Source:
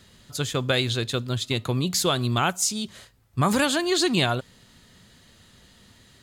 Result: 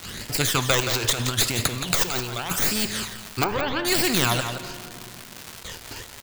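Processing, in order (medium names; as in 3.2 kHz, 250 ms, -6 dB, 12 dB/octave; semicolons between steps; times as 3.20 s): tracing distortion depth 0.14 ms; de-esser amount 60%; gate with hold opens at -42 dBFS; 0.80–2.56 s: compressor with a negative ratio -31 dBFS, ratio -0.5; phase shifter stages 12, 0.81 Hz, lowest notch 180–1200 Hz; crackle 390 per s -46 dBFS; 3.44–3.85 s: tape spacing loss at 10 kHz 44 dB; delay 172 ms -14.5 dB; reverberation, pre-delay 3 ms, DRR 16.5 dB; spectrum-flattening compressor 2:1; trim +9 dB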